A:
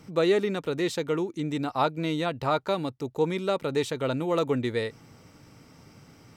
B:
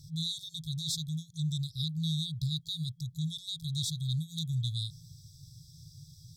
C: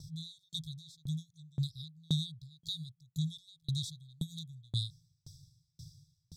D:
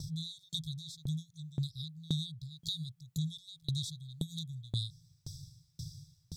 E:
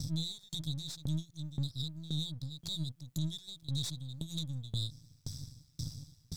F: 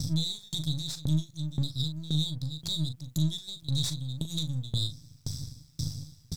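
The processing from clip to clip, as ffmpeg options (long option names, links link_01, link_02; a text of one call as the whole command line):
ffmpeg -i in.wav -af "afftfilt=real='re*(1-between(b*sr/4096,170,3300))':imag='im*(1-between(b*sr/4096,170,3300))':win_size=4096:overlap=0.75,volume=4dB" out.wav
ffmpeg -i in.wav -af "highshelf=frequency=12000:gain=-7,aeval=exprs='val(0)*pow(10,-36*if(lt(mod(1.9*n/s,1),2*abs(1.9)/1000),1-mod(1.9*n/s,1)/(2*abs(1.9)/1000),(mod(1.9*n/s,1)-2*abs(1.9)/1000)/(1-2*abs(1.9)/1000))/20)':channel_layout=same,volume=4.5dB" out.wav
ffmpeg -i in.wav -af "acompressor=threshold=-49dB:ratio=2,volume=9dB" out.wav
ffmpeg -i in.wav -af "aeval=exprs='if(lt(val(0),0),0.447*val(0),val(0))':channel_layout=same,alimiter=level_in=8dB:limit=-24dB:level=0:latency=1:release=87,volume=-8dB,volume=6.5dB" out.wav
ffmpeg -i in.wav -filter_complex "[0:a]asplit=2[link_01][link_02];[link_02]adelay=39,volume=-10.5dB[link_03];[link_01][link_03]amix=inputs=2:normalize=0,volume=6.5dB" out.wav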